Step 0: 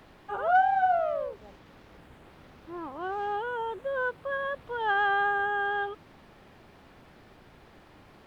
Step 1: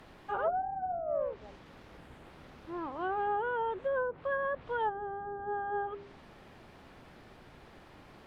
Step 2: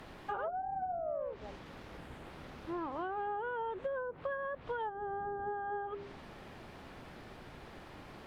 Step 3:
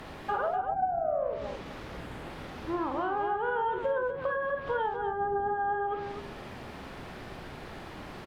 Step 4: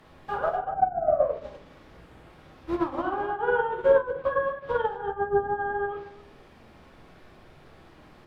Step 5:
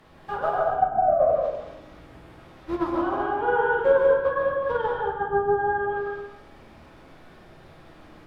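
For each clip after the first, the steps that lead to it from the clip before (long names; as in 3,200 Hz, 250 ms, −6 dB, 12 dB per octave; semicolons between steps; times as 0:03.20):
treble cut that deepens with the level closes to 390 Hz, closed at −23 dBFS; hum removal 100.6 Hz, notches 4
downward compressor 10 to 1, threshold −38 dBFS, peak gain reduction 12 dB; level +3.5 dB
loudspeakers that aren't time-aligned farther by 17 metres −6 dB, 85 metres −8 dB; level +6.5 dB
rectangular room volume 88 cubic metres, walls mixed, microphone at 0.64 metres; expander for the loud parts 2.5 to 1, over −35 dBFS; level +7.5 dB
dense smooth reverb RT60 0.81 s, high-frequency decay 0.75×, pre-delay 120 ms, DRR 0 dB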